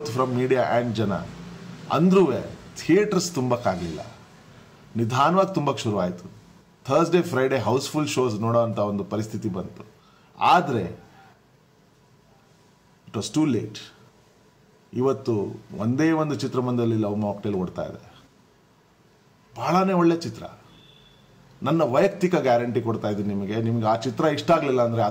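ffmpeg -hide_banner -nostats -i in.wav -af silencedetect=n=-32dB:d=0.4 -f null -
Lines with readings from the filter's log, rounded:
silence_start: 4.08
silence_end: 4.96 | silence_duration: 0.88
silence_start: 6.26
silence_end: 6.85 | silence_duration: 0.60
silence_start: 9.82
silence_end: 10.40 | silence_duration: 0.58
silence_start: 10.94
silence_end: 13.14 | silence_duration: 2.20
silence_start: 13.84
silence_end: 14.93 | silence_duration: 1.09
silence_start: 17.96
silence_end: 19.56 | silence_duration: 1.60
silence_start: 20.47
silence_end: 21.62 | silence_duration: 1.15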